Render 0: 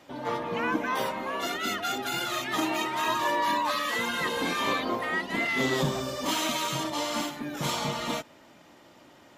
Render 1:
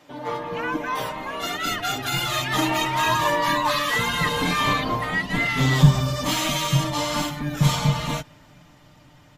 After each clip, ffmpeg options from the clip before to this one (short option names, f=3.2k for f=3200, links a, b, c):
-af "aecho=1:1:6.7:0.54,asubboost=boost=10.5:cutoff=110,dynaudnorm=f=250:g=13:m=6dB"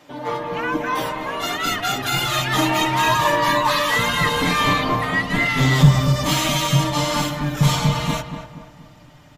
-filter_complex "[0:a]asplit=2[a][b];[b]asoftclip=type=hard:threshold=-17dB,volume=-10.5dB[c];[a][c]amix=inputs=2:normalize=0,asplit=2[d][e];[e]adelay=237,lowpass=f=1.8k:p=1,volume=-8.5dB,asplit=2[f][g];[g]adelay=237,lowpass=f=1.8k:p=1,volume=0.44,asplit=2[h][i];[i]adelay=237,lowpass=f=1.8k:p=1,volume=0.44,asplit=2[j][k];[k]adelay=237,lowpass=f=1.8k:p=1,volume=0.44,asplit=2[l][m];[m]adelay=237,lowpass=f=1.8k:p=1,volume=0.44[n];[d][f][h][j][l][n]amix=inputs=6:normalize=0,volume=1dB"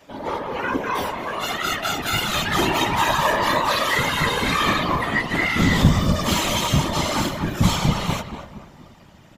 -af "afftfilt=real='hypot(re,im)*cos(2*PI*random(0))':imag='hypot(re,im)*sin(2*PI*random(1))':win_size=512:overlap=0.75,volume=4.5dB"